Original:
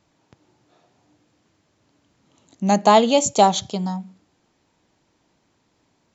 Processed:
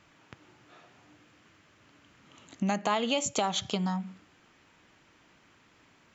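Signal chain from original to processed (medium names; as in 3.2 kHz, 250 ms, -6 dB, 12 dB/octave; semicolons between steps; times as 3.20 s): peak limiter -8 dBFS, peak gain reduction 5.5 dB; compression 6:1, threshold -29 dBFS, peak gain reduction 15 dB; high-order bell 1.9 kHz +8.5 dB; trim +1.5 dB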